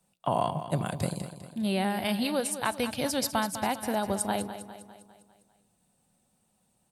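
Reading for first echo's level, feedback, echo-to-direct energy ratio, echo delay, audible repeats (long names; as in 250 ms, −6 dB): −11.5 dB, 52%, −10.0 dB, 201 ms, 5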